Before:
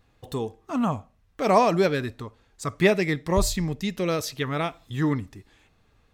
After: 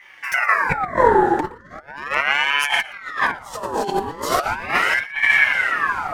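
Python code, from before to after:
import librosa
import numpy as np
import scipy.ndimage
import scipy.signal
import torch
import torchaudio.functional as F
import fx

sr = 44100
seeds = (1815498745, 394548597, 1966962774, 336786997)

p1 = fx.rev_double_slope(x, sr, seeds[0], early_s=0.43, late_s=4.7, knee_db=-18, drr_db=-6.0)
p2 = fx.over_compress(p1, sr, threshold_db=-27.0, ratio=-0.5)
p3 = fx.robotise(p2, sr, hz=143.0, at=(1.8, 2.7))
p4 = fx.graphic_eq(p3, sr, hz=(250, 1000, 2000), db=(11, 8, -7))
p5 = p4 + fx.echo_single(p4, sr, ms=118, db=-19.0, dry=0)
p6 = fx.filter_lfo_notch(p5, sr, shape='square', hz=2.8, low_hz=570.0, high_hz=5700.0, q=2.6)
p7 = fx.ring_lfo(p6, sr, carrier_hz=1300.0, swing_pct=55, hz=0.38)
y = F.gain(torch.from_numpy(p7), 3.5).numpy()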